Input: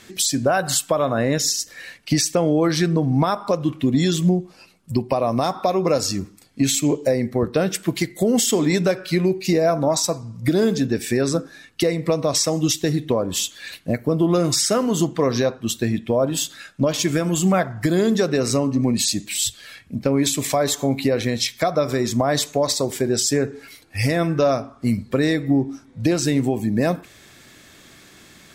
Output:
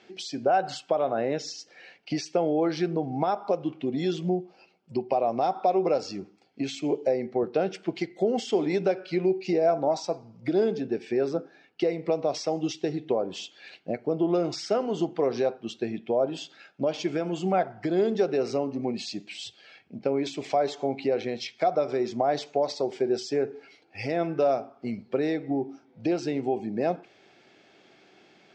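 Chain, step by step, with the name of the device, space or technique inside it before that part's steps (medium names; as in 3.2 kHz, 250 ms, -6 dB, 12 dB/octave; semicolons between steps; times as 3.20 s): 10.71–11.83 s: treble shelf 3.7 kHz -6 dB; kitchen radio (cabinet simulation 230–4500 Hz, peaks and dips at 260 Hz -4 dB, 390 Hz +5 dB, 770 Hz +8 dB, 1.1 kHz -8 dB, 1.8 kHz -7 dB, 3.8 kHz -8 dB); trim -6.5 dB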